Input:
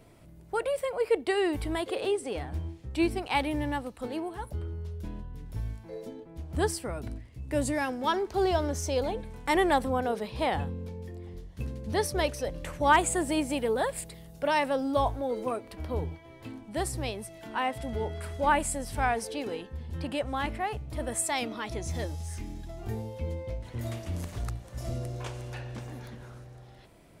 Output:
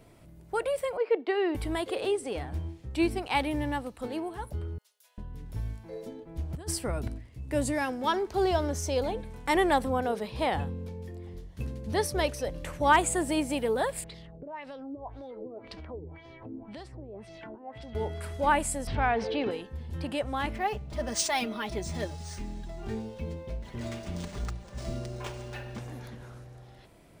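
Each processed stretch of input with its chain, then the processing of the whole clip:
0:00.97–0:01.55: Butterworth high-pass 240 Hz + high-frequency loss of the air 230 metres
0:04.78–0:05.18: Butterworth high-pass 470 Hz 96 dB per octave + first difference
0:06.27–0:07.08: low-shelf EQ 65 Hz +8 dB + compressor whose output falls as the input rises −31 dBFS, ratio −0.5
0:14.04–0:17.95: downward compressor 8 to 1, threshold −40 dBFS + auto-filter low-pass sine 1.9 Hz 360–5,300 Hz
0:18.87–0:19.51: low-pass filter 3,800 Hz 24 dB per octave + envelope flattener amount 50%
0:20.55–0:25.78: high-shelf EQ 6,000 Hz +3.5 dB + comb filter 5 ms, depth 62% + linearly interpolated sample-rate reduction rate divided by 3×
whole clip: no processing

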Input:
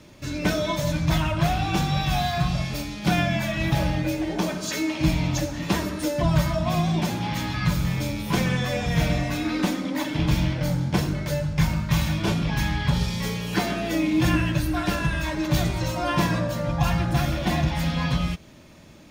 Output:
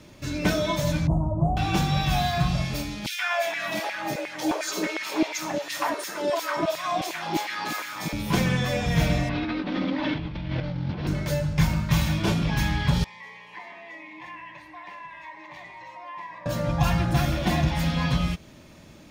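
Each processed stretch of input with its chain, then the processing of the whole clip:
0:01.07–0:01.57: inverse Chebyshev band-stop filter 1,700–4,700 Hz, stop band 50 dB + head-to-tape spacing loss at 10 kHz 25 dB
0:03.06–0:08.13: auto-filter high-pass saw down 2.8 Hz 300–2,300 Hz + three-band delay without the direct sound highs, mids, lows 120/380 ms, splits 470/2,700 Hz
0:09.29–0:11.07: linear delta modulator 32 kbit/s, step −37 dBFS + compressor whose output falls as the input rises −29 dBFS + low-pass filter 4,200 Hz 24 dB per octave
0:13.04–0:16.46: pair of resonant band-passes 1,400 Hz, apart 0.98 octaves + downward compressor 2 to 1, threshold −40 dBFS
whole clip: no processing

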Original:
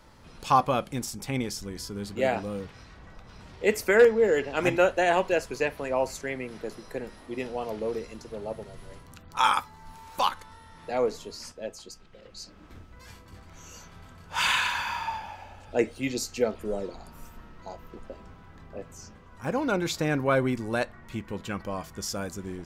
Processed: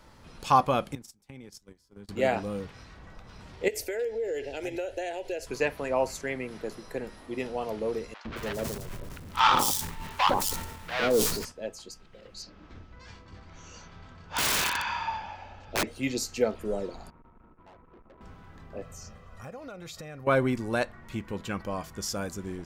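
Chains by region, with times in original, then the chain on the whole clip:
0:00.95–0:02.09: noise gate −34 dBFS, range −27 dB + downward compressor 16 to 1, threshold −41 dBFS + multiband upward and downward expander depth 40%
0:03.68–0:05.47: downward compressor 8 to 1, threshold −27 dBFS + phaser with its sweep stopped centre 470 Hz, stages 4
0:08.14–0:11.45: each half-wave held at its own peak + three-band delay without the direct sound mids, lows, highs 110/220 ms, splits 770/4,400 Hz + level that may fall only so fast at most 54 dB per second
0:12.42–0:15.87: low-pass filter 6,000 Hz 24 dB per octave + wrap-around overflow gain 20.5 dB
0:17.10–0:18.21: Chebyshev low-pass with heavy ripple 1,400 Hz, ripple 6 dB + tube saturation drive 50 dB, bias 0.7
0:18.82–0:20.27: comb filter 1.6 ms, depth 57% + downward compressor 8 to 1, threshold −39 dBFS
whole clip: no processing

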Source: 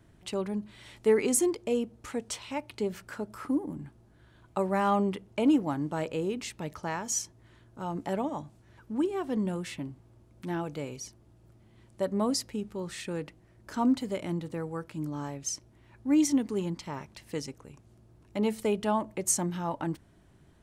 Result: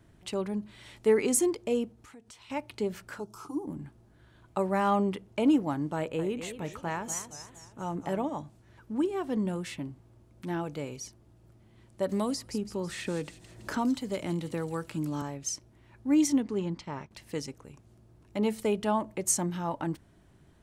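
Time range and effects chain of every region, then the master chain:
0:01.91–0:02.50: parametric band 540 Hz −7.5 dB 0.3 octaves + downward compressor 3 to 1, threshold −53 dBFS
0:03.19–0:03.66: parametric band 6,100 Hz +9 dB 0.46 octaves + phaser with its sweep stopped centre 370 Hz, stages 8
0:05.96–0:08.24: parametric band 5,200 Hz −12.5 dB 0.41 octaves + feedback echo with a swinging delay time 233 ms, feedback 46%, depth 216 cents, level −11 dB
0:12.09–0:15.22: delay with a high-pass on its return 164 ms, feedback 36%, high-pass 3,900 Hz, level −8 dB + multiband upward and downward compressor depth 70%
0:16.40–0:17.11: downward expander −46 dBFS + high-frequency loss of the air 76 metres
whole clip: no processing

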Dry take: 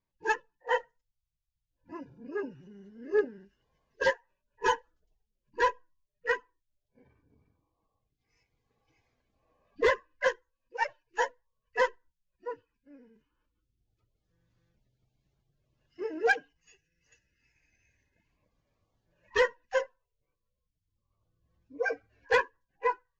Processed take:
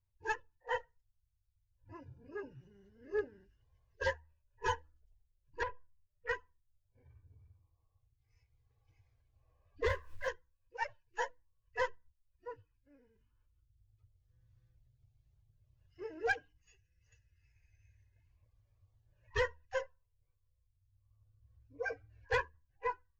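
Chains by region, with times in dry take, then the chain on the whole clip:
0:05.63–0:06.29: downward compressor 2.5 to 1, threshold −29 dBFS + high-frequency loss of the air 280 metres + highs frequency-modulated by the lows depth 0.32 ms
0:09.88–0:10.28: mu-law and A-law mismatch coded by mu + upward compression, threshold −33 dBFS + micro pitch shift up and down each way 52 cents
whole clip: low shelf with overshoot 140 Hz +13 dB, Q 3; hum removal 76.7 Hz, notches 4; level −7.5 dB

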